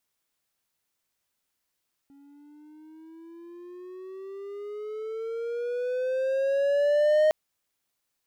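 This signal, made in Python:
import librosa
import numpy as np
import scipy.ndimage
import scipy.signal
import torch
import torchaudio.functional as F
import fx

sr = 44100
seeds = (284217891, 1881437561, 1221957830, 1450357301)

y = fx.riser_tone(sr, length_s=5.21, level_db=-15, wave='triangle', hz=277.0, rise_st=14.0, swell_db=34.0)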